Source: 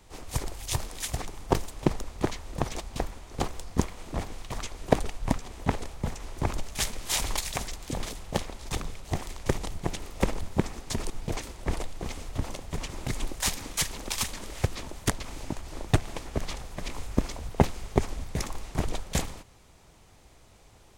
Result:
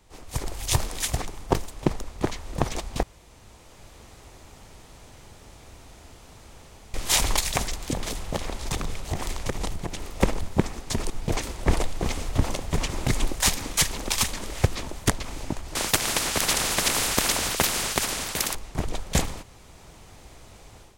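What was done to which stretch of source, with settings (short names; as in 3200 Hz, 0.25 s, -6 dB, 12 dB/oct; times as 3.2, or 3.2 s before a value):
3.03–6.94 room tone
7.93–10.15 compressor, threshold -31 dBFS
15.75–18.55 spectral compressor 4:1
whole clip: AGC; gain -3 dB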